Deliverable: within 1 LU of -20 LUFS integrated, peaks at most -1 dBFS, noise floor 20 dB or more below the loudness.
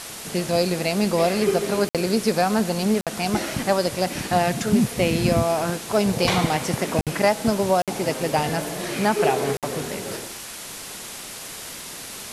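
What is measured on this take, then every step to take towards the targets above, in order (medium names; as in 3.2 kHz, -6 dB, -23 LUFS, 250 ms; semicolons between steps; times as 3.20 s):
dropouts 5; longest dropout 57 ms; noise floor -36 dBFS; noise floor target -43 dBFS; loudness -22.5 LUFS; peak level -5.5 dBFS; loudness target -20.0 LUFS
-> interpolate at 1.89/3.01/7.01/7.82/9.57 s, 57 ms; noise print and reduce 7 dB; trim +2.5 dB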